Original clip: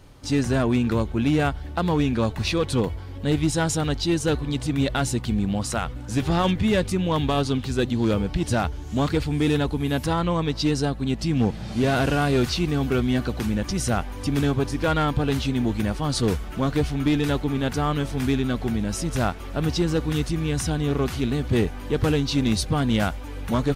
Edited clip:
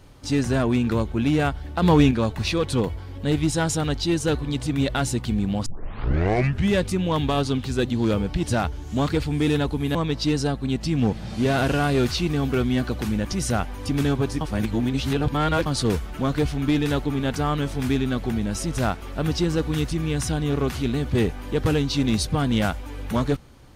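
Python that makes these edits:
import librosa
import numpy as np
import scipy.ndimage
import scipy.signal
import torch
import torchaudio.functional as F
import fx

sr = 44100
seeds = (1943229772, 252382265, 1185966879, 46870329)

y = fx.edit(x, sr, fx.clip_gain(start_s=1.82, length_s=0.29, db=6.0),
    fx.tape_start(start_s=5.66, length_s=1.1),
    fx.cut(start_s=9.95, length_s=0.38),
    fx.reverse_span(start_s=14.79, length_s=1.25), tone=tone)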